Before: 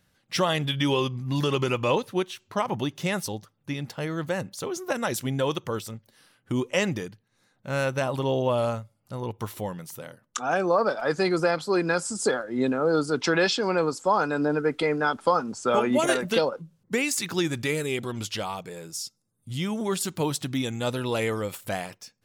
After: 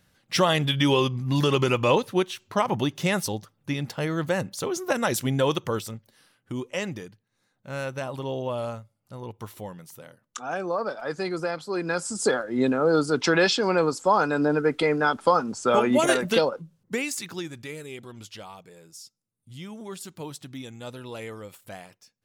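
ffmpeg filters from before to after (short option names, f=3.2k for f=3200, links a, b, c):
-af "volume=10.5dB,afade=t=out:st=5.64:d=0.9:silence=0.375837,afade=t=in:st=11.73:d=0.62:silence=0.421697,afade=t=out:st=16.34:d=1.18:silence=0.237137"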